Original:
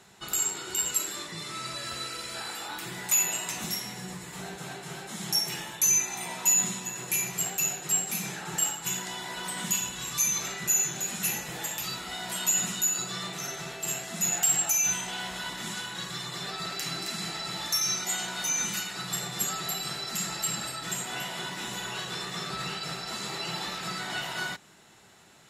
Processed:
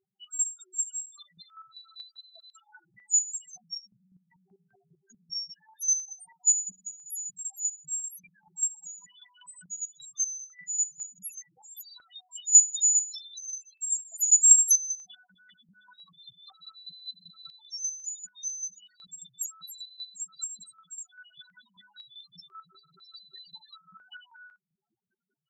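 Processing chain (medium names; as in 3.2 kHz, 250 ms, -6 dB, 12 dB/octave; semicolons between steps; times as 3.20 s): 12.52–14.76 s: RIAA curve recording; loudest bins only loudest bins 1; tilt EQ +3.5 dB/octave; de-hum 201.7 Hz, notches 4; square tremolo 5.1 Hz, depth 65%, duty 25%; step-sequenced notch 2 Hz 600–3600 Hz; trim -1.5 dB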